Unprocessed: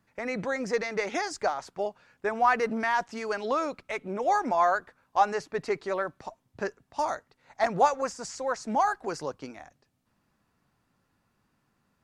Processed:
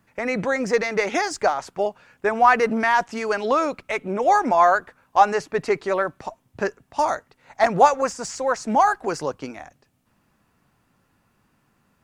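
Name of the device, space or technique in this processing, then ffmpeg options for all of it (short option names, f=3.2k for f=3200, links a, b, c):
exciter from parts: -filter_complex "[0:a]asplit=2[a][b];[b]highpass=f=2.6k:w=0.5412,highpass=f=2.6k:w=1.3066,asoftclip=type=tanh:threshold=-38.5dB,highpass=f=2.4k:w=0.5412,highpass=f=2.4k:w=1.3066,volume=-11.5dB[c];[a][c]amix=inputs=2:normalize=0,volume=7.5dB"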